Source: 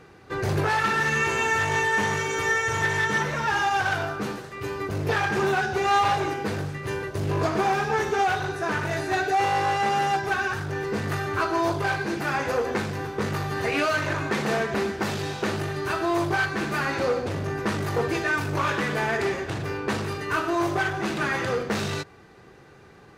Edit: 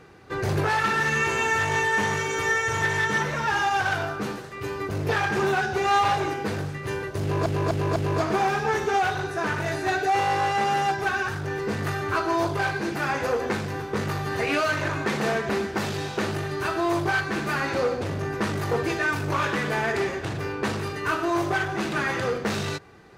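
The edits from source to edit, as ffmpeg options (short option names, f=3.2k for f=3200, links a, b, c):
-filter_complex "[0:a]asplit=4[a][b][c][d];[a]atrim=end=7.462[e];[b]atrim=start=7.208:end=7.462[f];[c]atrim=start=7.208:end=7.462[g];[d]atrim=start=7.208[h];[e][f]acrossfade=d=0.004:c1=hsin:c2=hsin[i];[i][g]acrossfade=d=0.004:c1=hsin:c2=hsin[j];[j][h]acrossfade=d=0.004:c1=hsin:c2=hsin"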